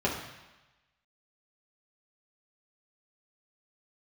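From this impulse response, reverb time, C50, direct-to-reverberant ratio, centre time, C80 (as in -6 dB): 1.1 s, 5.0 dB, -5.0 dB, 38 ms, 7.5 dB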